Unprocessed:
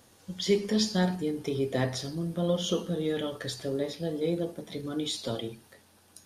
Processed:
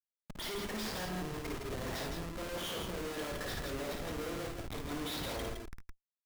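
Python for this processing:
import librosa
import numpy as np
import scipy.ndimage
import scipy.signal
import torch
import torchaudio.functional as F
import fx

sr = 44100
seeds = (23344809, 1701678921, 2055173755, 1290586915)

y = fx.over_compress(x, sr, threshold_db=-35.0, ratio=-1.0, at=(1.04, 1.84), fade=0.02)
y = fx.bandpass_q(y, sr, hz=1600.0, q=0.86)
y = fx.schmitt(y, sr, flips_db=-45.0)
y = fx.echo_multitap(y, sr, ms=(55, 74, 162, 165), db=(-4.5, -13.5, -9.5, -6.0))
y = y * 10.0 ** (1.0 / 20.0)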